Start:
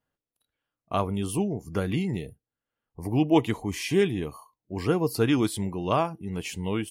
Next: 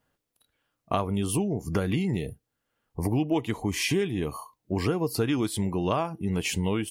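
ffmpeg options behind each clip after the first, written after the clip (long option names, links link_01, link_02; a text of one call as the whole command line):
ffmpeg -i in.wav -af "acompressor=threshold=-33dB:ratio=5,volume=9dB" out.wav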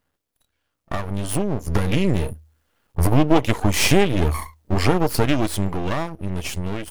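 ffmpeg -i in.wav -af "dynaudnorm=framelen=260:gausssize=13:maxgain=11dB,aeval=exprs='max(val(0),0)':channel_layout=same,equalizer=frequency=78:width=8:gain=12,volume=3.5dB" out.wav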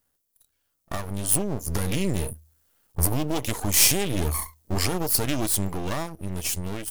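ffmpeg -i in.wav -filter_complex "[0:a]acrossover=split=3400[link_01][link_02];[link_01]alimiter=limit=-10dB:level=0:latency=1[link_03];[link_02]crystalizer=i=3:c=0[link_04];[link_03][link_04]amix=inputs=2:normalize=0,volume=-5dB" out.wav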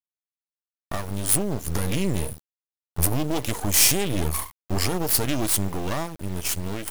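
ffmpeg -i in.wav -filter_complex "[0:a]asplit=2[link_01][link_02];[link_02]volume=19.5dB,asoftclip=hard,volume=-19.5dB,volume=-9dB[link_03];[link_01][link_03]amix=inputs=2:normalize=0,acrusher=bits=4:dc=4:mix=0:aa=0.000001,volume=-1dB" out.wav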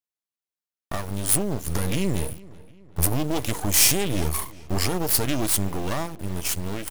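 ffmpeg -i in.wav -filter_complex "[0:a]asplit=2[link_01][link_02];[link_02]adelay=379,lowpass=frequency=3600:poles=1,volume=-21dB,asplit=2[link_03][link_04];[link_04]adelay=379,lowpass=frequency=3600:poles=1,volume=0.51,asplit=2[link_05][link_06];[link_06]adelay=379,lowpass=frequency=3600:poles=1,volume=0.51,asplit=2[link_07][link_08];[link_08]adelay=379,lowpass=frequency=3600:poles=1,volume=0.51[link_09];[link_01][link_03][link_05][link_07][link_09]amix=inputs=5:normalize=0" out.wav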